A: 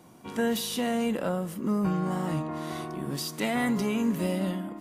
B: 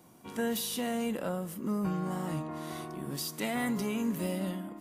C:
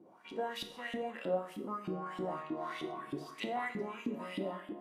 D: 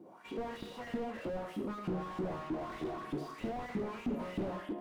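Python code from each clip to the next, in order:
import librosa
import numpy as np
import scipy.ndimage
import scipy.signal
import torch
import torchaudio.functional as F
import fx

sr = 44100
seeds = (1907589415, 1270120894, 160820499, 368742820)

y1 = fx.high_shelf(x, sr, hz=9600.0, db=9.0)
y1 = F.gain(torch.from_numpy(y1), -5.0).numpy()
y2 = fx.rider(y1, sr, range_db=3, speed_s=0.5)
y2 = fx.filter_lfo_bandpass(y2, sr, shape='saw_up', hz=3.2, low_hz=280.0, high_hz=3500.0, q=3.3)
y2 = fx.rev_plate(y2, sr, seeds[0], rt60_s=0.55, hf_ratio=0.95, predelay_ms=0, drr_db=5.5)
y2 = F.gain(torch.from_numpy(y2), 5.5).numpy()
y3 = fx.slew_limit(y2, sr, full_power_hz=4.4)
y3 = F.gain(torch.from_numpy(y3), 5.0).numpy()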